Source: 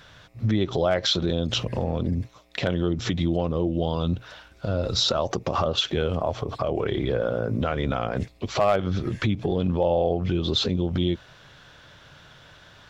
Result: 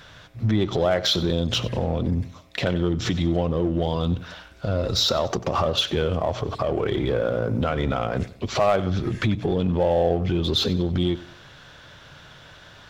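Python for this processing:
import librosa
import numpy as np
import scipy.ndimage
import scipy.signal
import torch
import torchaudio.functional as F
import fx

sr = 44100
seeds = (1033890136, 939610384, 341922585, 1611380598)

p1 = np.clip(x, -10.0 ** (-28.5 / 20.0), 10.0 ** (-28.5 / 20.0))
p2 = x + F.gain(torch.from_numpy(p1), -6.5).numpy()
y = fx.echo_feedback(p2, sr, ms=94, feedback_pct=36, wet_db=-17.0)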